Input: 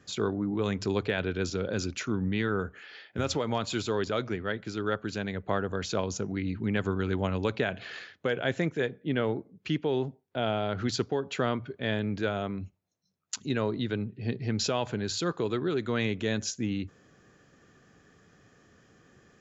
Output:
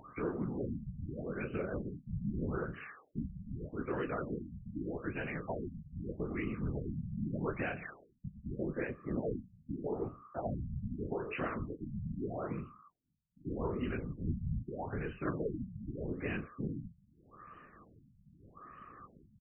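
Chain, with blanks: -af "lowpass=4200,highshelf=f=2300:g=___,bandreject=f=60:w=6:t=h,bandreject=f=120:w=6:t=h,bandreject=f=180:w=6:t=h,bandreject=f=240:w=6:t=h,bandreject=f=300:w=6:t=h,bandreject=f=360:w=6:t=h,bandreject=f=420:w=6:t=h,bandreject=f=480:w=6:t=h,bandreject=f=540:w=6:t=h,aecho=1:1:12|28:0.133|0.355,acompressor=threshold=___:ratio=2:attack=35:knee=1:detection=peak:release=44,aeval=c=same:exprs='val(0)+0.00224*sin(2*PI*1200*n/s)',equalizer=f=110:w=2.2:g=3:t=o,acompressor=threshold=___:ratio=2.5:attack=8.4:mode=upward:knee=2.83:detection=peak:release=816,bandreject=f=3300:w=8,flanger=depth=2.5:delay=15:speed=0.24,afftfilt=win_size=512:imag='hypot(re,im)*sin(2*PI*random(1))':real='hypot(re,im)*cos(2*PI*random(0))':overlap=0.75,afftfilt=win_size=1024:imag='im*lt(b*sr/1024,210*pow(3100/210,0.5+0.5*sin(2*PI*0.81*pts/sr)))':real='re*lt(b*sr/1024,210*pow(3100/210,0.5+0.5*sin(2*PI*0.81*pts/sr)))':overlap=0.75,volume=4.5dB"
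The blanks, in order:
11, -38dB, -42dB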